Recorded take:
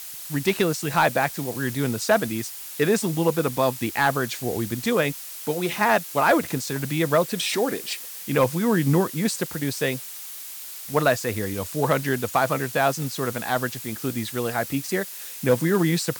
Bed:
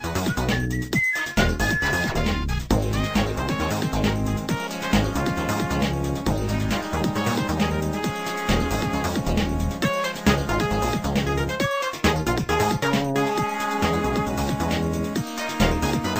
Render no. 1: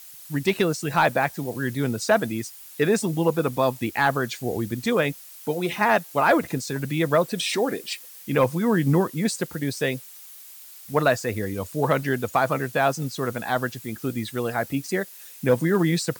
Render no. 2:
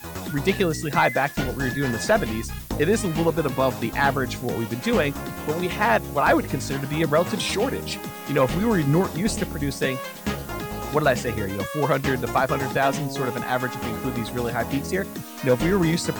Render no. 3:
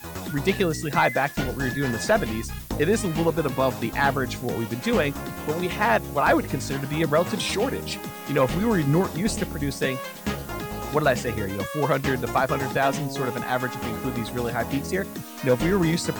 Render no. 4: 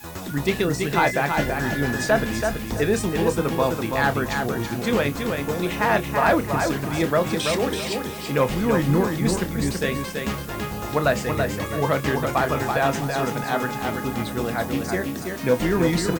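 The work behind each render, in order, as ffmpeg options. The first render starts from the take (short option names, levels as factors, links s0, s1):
-af "afftdn=nr=9:nf=-37"
-filter_complex "[1:a]volume=0.376[s0];[0:a][s0]amix=inputs=2:normalize=0"
-af "volume=0.891"
-filter_complex "[0:a]asplit=2[s0][s1];[s1]adelay=28,volume=0.266[s2];[s0][s2]amix=inputs=2:normalize=0,aecho=1:1:331|662|993|1324:0.562|0.163|0.0473|0.0137"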